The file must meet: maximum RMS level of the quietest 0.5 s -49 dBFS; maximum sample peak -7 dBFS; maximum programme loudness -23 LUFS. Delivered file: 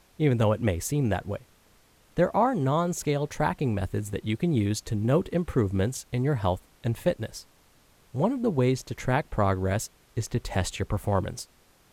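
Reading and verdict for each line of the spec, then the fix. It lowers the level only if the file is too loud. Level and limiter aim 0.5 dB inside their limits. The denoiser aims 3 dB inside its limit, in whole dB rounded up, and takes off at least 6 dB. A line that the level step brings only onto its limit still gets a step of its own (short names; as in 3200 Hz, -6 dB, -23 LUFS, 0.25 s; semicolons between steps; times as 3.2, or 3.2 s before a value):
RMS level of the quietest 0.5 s -60 dBFS: OK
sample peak -10.5 dBFS: OK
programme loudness -27.5 LUFS: OK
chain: none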